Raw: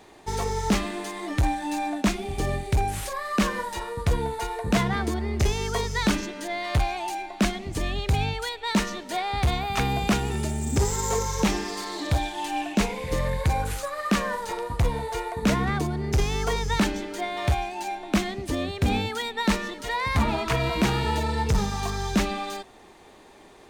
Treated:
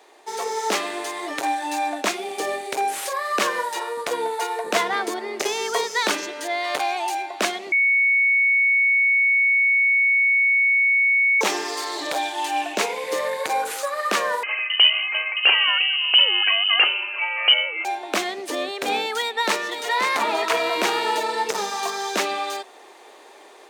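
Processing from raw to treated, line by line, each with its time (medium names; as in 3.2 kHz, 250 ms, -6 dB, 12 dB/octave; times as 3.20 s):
7.72–11.41 s: bleep 2.22 kHz -20.5 dBFS
14.43–17.85 s: frequency inversion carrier 3 kHz
19.18–19.92 s: echo throw 530 ms, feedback 40%, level -7 dB
whole clip: level rider gain up to 5.5 dB; high-pass 380 Hz 24 dB/octave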